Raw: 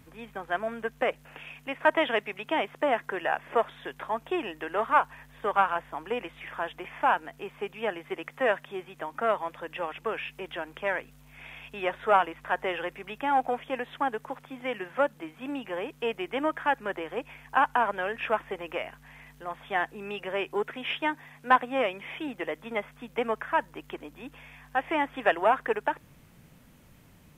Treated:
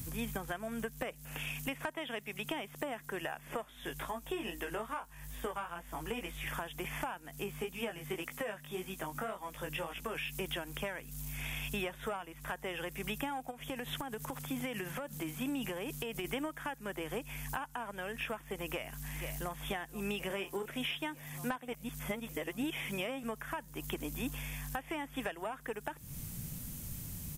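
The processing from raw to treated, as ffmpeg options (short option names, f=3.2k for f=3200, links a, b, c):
-filter_complex "[0:a]asplit=3[a][b][c];[a]afade=t=out:st=3.63:d=0.02[d];[b]flanger=delay=16.5:depth=2.1:speed=2.4,afade=t=in:st=3.63:d=0.02,afade=t=out:st=6.46:d=0.02[e];[c]afade=t=in:st=6.46:d=0.02[f];[d][e][f]amix=inputs=3:normalize=0,asplit=3[g][h][i];[g]afade=t=out:st=7.44:d=0.02[j];[h]flanger=delay=16:depth=3.9:speed=1.8,afade=t=in:st=7.44:d=0.02,afade=t=out:st=10.14:d=0.02[k];[i]afade=t=in:st=10.14:d=0.02[l];[j][k][l]amix=inputs=3:normalize=0,asplit=3[m][n][o];[m]afade=t=out:st=13.5:d=0.02[p];[n]acompressor=threshold=-37dB:ratio=6:attack=3.2:release=140:knee=1:detection=peak,afade=t=in:st=13.5:d=0.02,afade=t=out:st=16.24:d=0.02[q];[o]afade=t=in:st=16.24:d=0.02[r];[p][q][r]amix=inputs=3:normalize=0,asplit=2[s][t];[t]afade=t=in:st=18.66:d=0.01,afade=t=out:st=19.6:d=0.01,aecho=0:1:480|960|1440|1920|2400|2880|3360|3840|4320|4800|5280|5760:0.199526|0.159621|0.127697|0.102157|0.0817259|0.0653808|0.0523046|0.0418437|0.0334749|0.02678|0.021424|0.0171392[u];[s][u]amix=inputs=2:normalize=0,asettb=1/sr,asplit=3[v][w][x];[v]atrim=end=20.274[y];[w]atrim=start=20.27:end=20.68,asetpts=PTS-STARTPTS,afade=t=in:d=0.004:c=qsin,afade=t=out:st=0.406:d=0.004:c=qsin,asplit=2[z][aa];[aa]adelay=31,volume=-7dB[ab];[z][ab]amix=inputs=2:normalize=0,atrim=end_sample=18081[ac];[x]atrim=start=20.676[ad];[y][ac]acrossfade=d=0.004:c1=hsin:c2=qsin[ae];[ae][ad]acrossfade=d=0.004:c1=qsin:c2=hsin,asplit=3[af][ag][ah];[af]atrim=end=21.682[ai];[ag]atrim=start=21.678:end=23.232,asetpts=PTS-STARTPTS,areverse[aj];[ah]atrim=start=23.228[ak];[ai][aj]acrossfade=d=0.004:c1=hsin:c2=hsin[al];[al][ak]acrossfade=d=0.004:c1=hsin:c2=hsin,highshelf=f=4.8k:g=12,acompressor=threshold=-37dB:ratio=12,bass=f=250:g=14,treble=f=4k:g=11"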